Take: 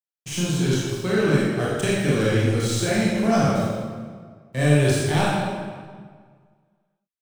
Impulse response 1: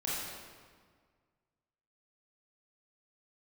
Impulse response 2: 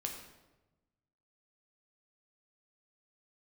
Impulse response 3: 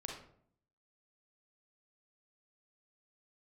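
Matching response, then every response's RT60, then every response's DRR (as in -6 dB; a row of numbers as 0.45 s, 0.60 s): 1; 1.7 s, 1.1 s, 0.60 s; -7.5 dB, 1.0 dB, -0.5 dB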